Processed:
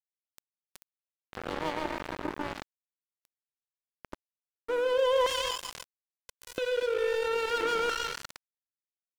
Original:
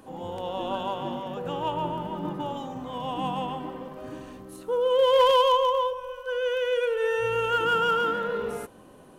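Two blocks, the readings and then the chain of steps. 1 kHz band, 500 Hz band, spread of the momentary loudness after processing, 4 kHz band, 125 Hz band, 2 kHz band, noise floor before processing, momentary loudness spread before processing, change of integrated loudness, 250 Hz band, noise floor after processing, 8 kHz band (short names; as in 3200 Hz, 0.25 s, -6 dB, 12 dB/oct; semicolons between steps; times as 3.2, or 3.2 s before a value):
-10.0 dB, -6.5 dB, 16 LU, -4.5 dB, -12.5 dB, -4.5 dB, -50 dBFS, 18 LU, -4.5 dB, -8.0 dB, under -85 dBFS, n/a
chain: LFO high-pass square 0.38 Hz 320–1900 Hz; echo 0.245 s -13.5 dB; crossover distortion -26 dBFS; fast leveller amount 50%; gain -7.5 dB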